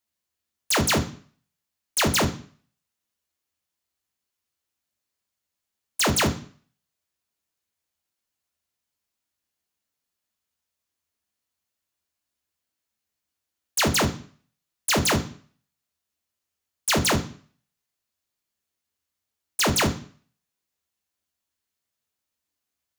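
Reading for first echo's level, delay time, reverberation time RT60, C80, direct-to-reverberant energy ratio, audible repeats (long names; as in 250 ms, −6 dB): no echo audible, no echo audible, 0.45 s, 17.5 dB, 6.5 dB, no echo audible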